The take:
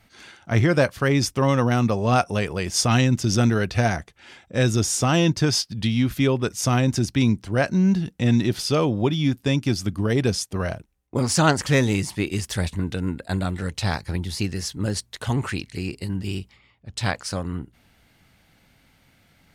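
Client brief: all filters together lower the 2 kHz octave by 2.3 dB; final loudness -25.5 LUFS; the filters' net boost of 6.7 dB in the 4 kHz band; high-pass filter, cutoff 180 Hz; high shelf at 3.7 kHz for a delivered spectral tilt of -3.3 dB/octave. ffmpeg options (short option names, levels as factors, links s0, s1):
-af "highpass=180,equalizer=f=2000:t=o:g=-6.5,highshelf=f=3700:g=6.5,equalizer=f=4000:t=o:g=5.5,volume=0.708"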